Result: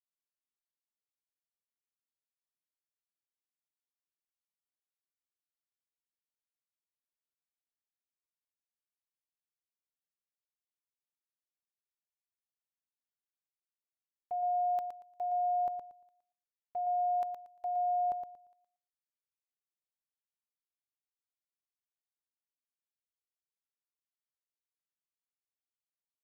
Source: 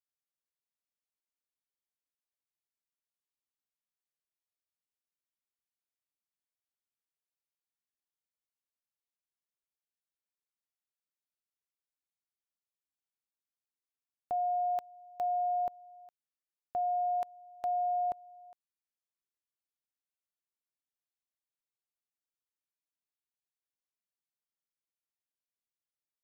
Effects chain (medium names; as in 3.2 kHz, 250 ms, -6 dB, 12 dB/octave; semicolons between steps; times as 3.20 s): gate -39 dBFS, range -12 dB; feedback delay 116 ms, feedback 22%, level -7 dB; trim -3 dB